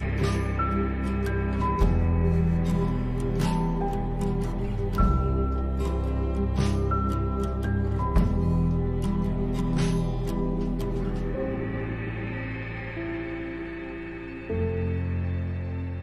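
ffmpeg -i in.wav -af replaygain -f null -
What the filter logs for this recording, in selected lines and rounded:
track_gain = +11.1 dB
track_peak = 0.178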